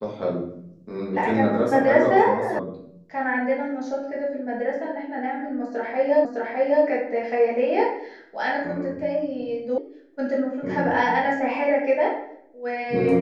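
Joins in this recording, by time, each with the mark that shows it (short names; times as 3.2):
2.59 sound cut off
6.25 repeat of the last 0.61 s
9.78 sound cut off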